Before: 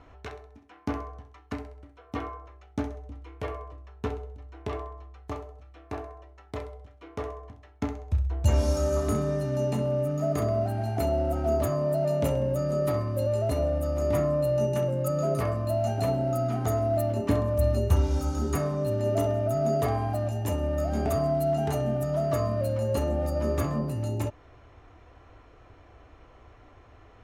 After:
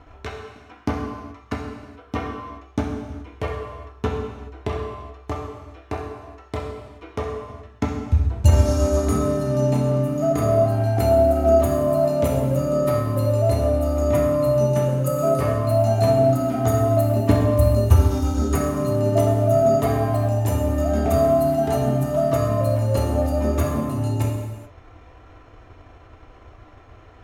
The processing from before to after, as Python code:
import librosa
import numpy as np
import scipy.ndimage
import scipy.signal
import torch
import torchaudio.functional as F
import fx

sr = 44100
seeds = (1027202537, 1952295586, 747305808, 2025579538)

y = fx.transient(x, sr, attack_db=4, sustain_db=-6)
y = fx.rev_gated(y, sr, seeds[0], gate_ms=450, shape='falling', drr_db=0.5)
y = y * librosa.db_to_amplitude(3.5)